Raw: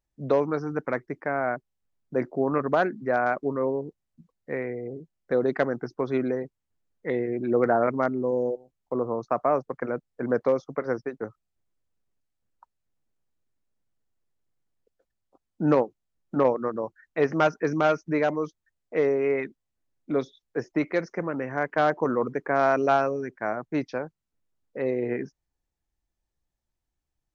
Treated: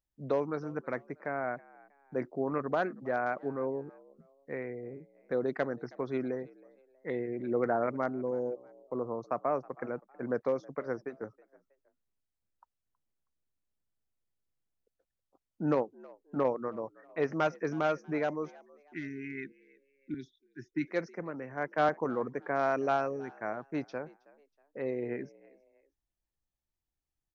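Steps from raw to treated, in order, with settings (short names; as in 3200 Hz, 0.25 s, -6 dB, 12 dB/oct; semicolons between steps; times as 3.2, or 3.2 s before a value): 18.59–20.87 spectral delete 400–1400 Hz; frequency-shifting echo 0.32 s, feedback 36%, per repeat +69 Hz, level -23 dB; 20.14–21.89 three-band expander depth 70%; gain -7.5 dB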